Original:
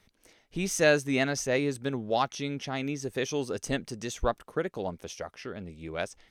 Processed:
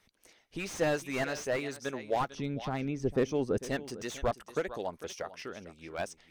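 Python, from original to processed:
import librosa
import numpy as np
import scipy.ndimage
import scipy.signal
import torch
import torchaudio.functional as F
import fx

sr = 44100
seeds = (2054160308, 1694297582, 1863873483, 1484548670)

y = fx.tilt_eq(x, sr, slope=-4.5, at=(2.29, 3.58))
y = fx.hpss(y, sr, part='harmonic', gain_db=-8)
y = fx.low_shelf(y, sr, hz=330.0, db=-6.5)
y = y + 10.0 ** (-16.0 / 20.0) * np.pad(y, (int(449 * sr / 1000.0), 0))[:len(y)]
y = fx.slew_limit(y, sr, full_power_hz=43.0)
y = y * librosa.db_to_amplitude(1.0)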